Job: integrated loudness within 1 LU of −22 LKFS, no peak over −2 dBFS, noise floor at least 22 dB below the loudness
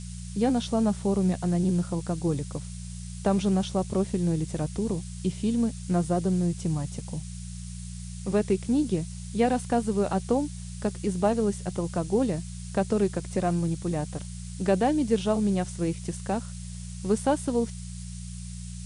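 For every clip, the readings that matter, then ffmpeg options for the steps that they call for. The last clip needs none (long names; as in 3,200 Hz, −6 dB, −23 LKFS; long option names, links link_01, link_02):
mains hum 60 Hz; hum harmonics up to 180 Hz; level of the hum −35 dBFS; background noise floor −38 dBFS; target noise floor −50 dBFS; integrated loudness −27.5 LKFS; sample peak −11.5 dBFS; target loudness −22.0 LKFS
→ -af "bandreject=frequency=60:width_type=h:width=4,bandreject=frequency=120:width_type=h:width=4,bandreject=frequency=180:width_type=h:width=4"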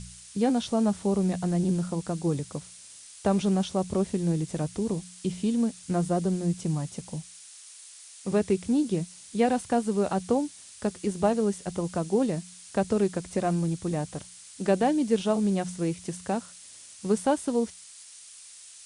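mains hum none found; background noise floor −48 dBFS; target noise floor −50 dBFS
→ -af "afftdn=noise_reduction=6:noise_floor=-48"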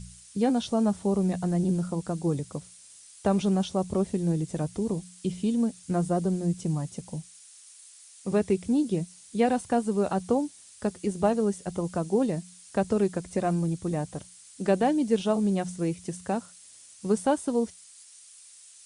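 background noise floor −52 dBFS; integrated loudness −28.0 LKFS; sample peak −11.5 dBFS; target loudness −22.0 LKFS
→ -af "volume=6dB"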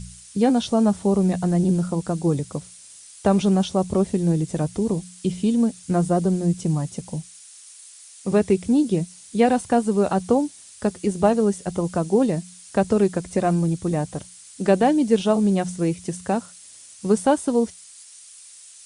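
integrated loudness −22.0 LKFS; sample peak −5.5 dBFS; background noise floor −46 dBFS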